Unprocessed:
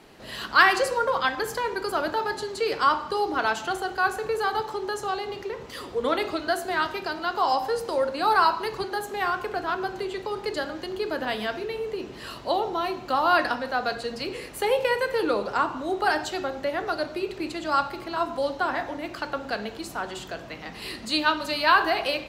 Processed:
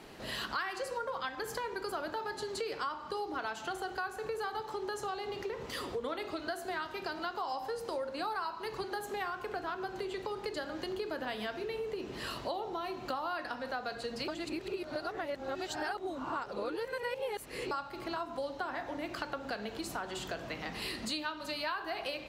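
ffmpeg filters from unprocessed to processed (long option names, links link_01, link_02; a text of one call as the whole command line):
ffmpeg -i in.wav -filter_complex "[0:a]asplit=3[link_01][link_02][link_03];[link_01]atrim=end=14.282[link_04];[link_02]atrim=start=14.278:end=17.712,asetpts=PTS-STARTPTS,areverse[link_05];[link_03]atrim=start=17.708[link_06];[link_04][link_05]acrossfade=duration=0.004:curve1=hsin:curve2=hsin[link_07];[link_07][link_06]acrossfade=duration=0.004:curve1=hsin:curve2=hsin,acompressor=threshold=-35dB:ratio=6" out.wav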